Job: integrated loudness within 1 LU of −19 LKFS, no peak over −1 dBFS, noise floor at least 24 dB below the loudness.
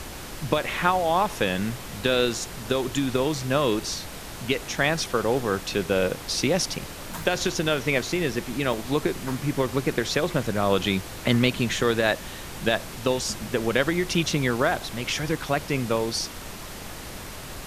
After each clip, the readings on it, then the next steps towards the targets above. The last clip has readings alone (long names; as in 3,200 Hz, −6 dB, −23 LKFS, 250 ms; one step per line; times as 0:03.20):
number of dropouts 1; longest dropout 2.0 ms; background noise floor −38 dBFS; target noise floor −50 dBFS; integrated loudness −25.5 LKFS; sample peak −6.0 dBFS; target loudness −19.0 LKFS
→ repair the gap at 0:08.73, 2 ms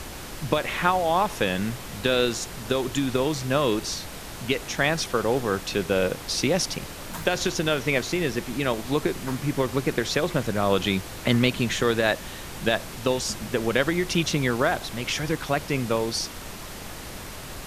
number of dropouts 0; background noise floor −38 dBFS; target noise floor −50 dBFS
→ noise reduction from a noise print 12 dB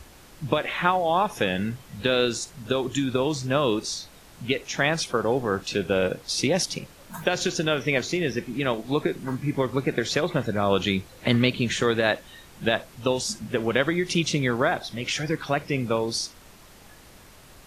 background noise floor −50 dBFS; integrated loudness −25.5 LKFS; sample peak −6.0 dBFS; target loudness −19.0 LKFS
→ level +6.5 dB
brickwall limiter −1 dBFS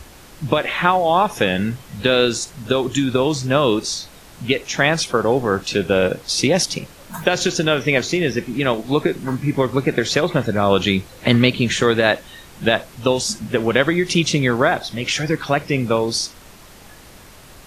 integrated loudness −19.0 LKFS; sample peak −1.0 dBFS; background noise floor −43 dBFS